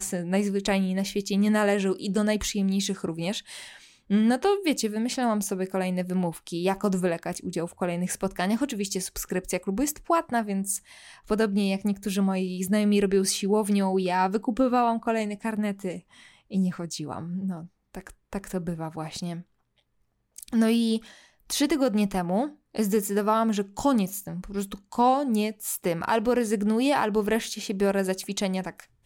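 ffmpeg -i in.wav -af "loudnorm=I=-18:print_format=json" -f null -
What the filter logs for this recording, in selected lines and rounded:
"input_i" : "-26.4",
"input_tp" : "-11.2",
"input_lra" : "5.1",
"input_thresh" : "-36.8",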